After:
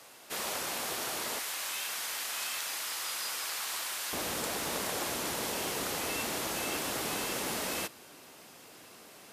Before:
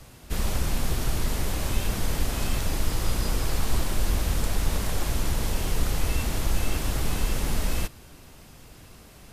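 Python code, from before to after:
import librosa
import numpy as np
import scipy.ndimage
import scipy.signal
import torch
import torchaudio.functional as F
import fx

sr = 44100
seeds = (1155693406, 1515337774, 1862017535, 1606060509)

y = fx.highpass(x, sr, hz=fx.steps((0.0, 510.0), (1.39, 1200.0), (4.13, 320.0)), slope=12)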